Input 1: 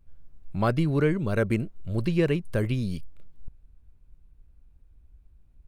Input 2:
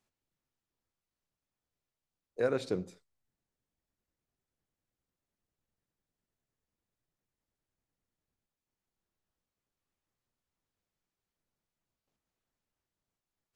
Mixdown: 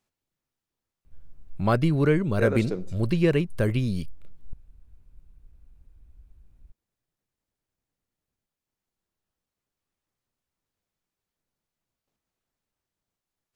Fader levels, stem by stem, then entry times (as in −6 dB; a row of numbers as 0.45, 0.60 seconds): +2.0, +2.0 decibels; 1.05, 0.00 seconds